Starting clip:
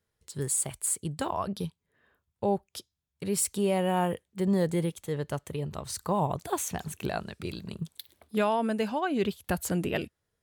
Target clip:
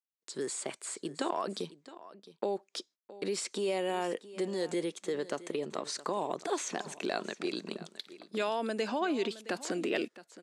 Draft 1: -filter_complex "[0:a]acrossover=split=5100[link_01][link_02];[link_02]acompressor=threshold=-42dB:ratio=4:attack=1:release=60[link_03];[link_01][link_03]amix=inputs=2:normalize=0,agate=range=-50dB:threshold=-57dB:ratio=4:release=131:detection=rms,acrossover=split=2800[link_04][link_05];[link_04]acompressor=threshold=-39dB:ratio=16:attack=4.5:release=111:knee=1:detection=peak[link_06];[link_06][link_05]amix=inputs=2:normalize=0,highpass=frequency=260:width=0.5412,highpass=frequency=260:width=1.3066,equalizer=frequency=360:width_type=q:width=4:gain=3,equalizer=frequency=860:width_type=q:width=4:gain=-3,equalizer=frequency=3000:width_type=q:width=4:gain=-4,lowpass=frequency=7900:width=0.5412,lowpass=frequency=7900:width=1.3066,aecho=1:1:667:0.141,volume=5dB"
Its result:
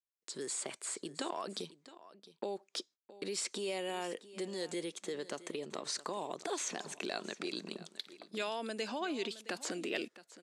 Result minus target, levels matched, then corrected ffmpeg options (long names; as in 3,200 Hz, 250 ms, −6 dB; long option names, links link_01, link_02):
downward compressor: peak gain reduction +6.5 dB
-filter_complex "[0:a]acrossover=split=5100[link_01][link_02];[link_02]acompressor=threshold=-42dB:ratio=4:attack=1:release=60[link_03];[link_01][link_03]amix=inputs=2:normalize=0,agate=range=-50dB:threshold=-57dB:ratio=4:release=131:detection=rms,acrossover=split=2800[link_04][link_05];[link_04]acompressor=threshold=-32dB:ratio=16:attack=4.5:release=111:knee=1:detection=peak[link_06];[link_06][link_05]amix=inputs=2:normalize=0,highpass=frequency=260:width=0.5412,highpass=frequency=260:width=1.3066,equalizer=frequency=360:width_type=q:width=4:gain=3,equalizer=frequency=860:width_type=q:width=4:gain=-3,equalizer=frequency=3000:width_type=q:width=4:gain=-4,lowpass=frequency=7900:width=0.5412,lowpass=frequency=7900:width=1.3066,aecho=1:1:667:0.141,volume=5dB"